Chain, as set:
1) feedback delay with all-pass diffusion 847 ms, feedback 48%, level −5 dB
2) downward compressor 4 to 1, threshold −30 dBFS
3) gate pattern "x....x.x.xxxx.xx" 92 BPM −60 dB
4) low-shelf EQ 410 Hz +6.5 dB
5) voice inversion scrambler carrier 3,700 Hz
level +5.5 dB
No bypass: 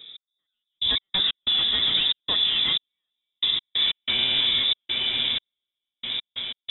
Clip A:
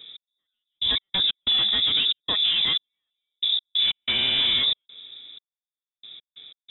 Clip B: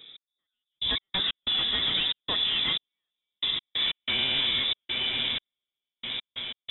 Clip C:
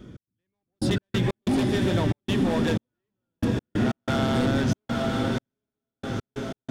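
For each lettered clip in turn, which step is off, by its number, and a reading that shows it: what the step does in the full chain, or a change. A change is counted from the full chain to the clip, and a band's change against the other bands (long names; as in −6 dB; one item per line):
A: 1, change in momentary loudness spread −2 LU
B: 4, 4 kHz band −4.5 dB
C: 5, 4 kHz band −35.0 dB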